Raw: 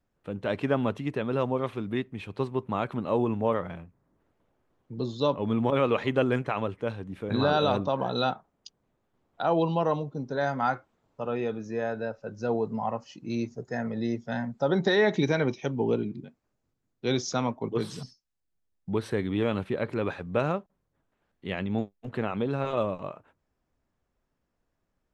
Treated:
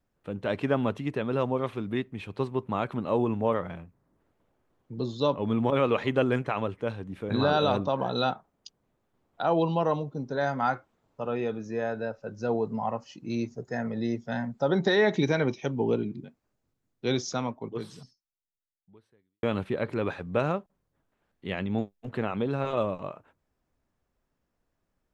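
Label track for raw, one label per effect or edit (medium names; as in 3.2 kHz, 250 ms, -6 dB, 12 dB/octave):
17.070000	19.430000	fade out quadratic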